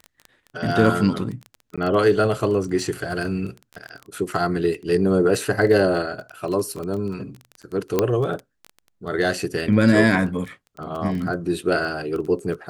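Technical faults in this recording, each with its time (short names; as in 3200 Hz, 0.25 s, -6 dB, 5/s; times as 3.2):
crackle 14/s -27 dBFS
1.76–1.78 gap 16 ms
7.99 pop -5 dBFS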